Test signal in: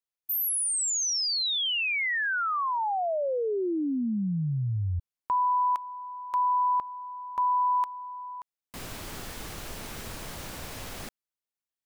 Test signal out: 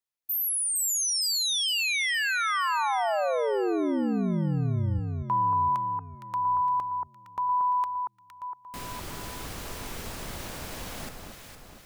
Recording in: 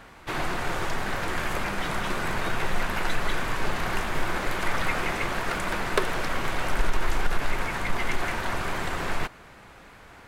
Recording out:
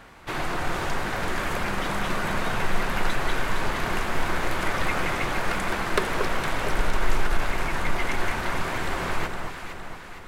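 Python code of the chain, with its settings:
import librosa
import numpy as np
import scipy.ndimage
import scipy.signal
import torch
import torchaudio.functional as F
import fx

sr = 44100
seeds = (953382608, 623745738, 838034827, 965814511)

y = fx.echo_alternate(x, sr, ms=231, hz=1400.0, feedback_pct=71, wet_db=-4)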